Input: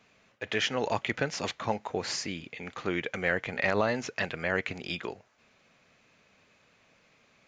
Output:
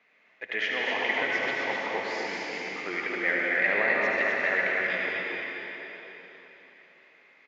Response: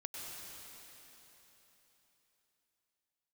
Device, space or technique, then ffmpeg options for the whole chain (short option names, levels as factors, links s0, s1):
station announcement: -filter_complex "[0:a]highpass=310,lowpass=3500,equalizer=f=2000:t=o:w=0.39:g=12,aecho=1:1:72.89|256.6:0.447|0.631[s0];[1:a]atrim=start_sample=2205[s1];[s0][s1]afir=irnorm=-1:irlink=0"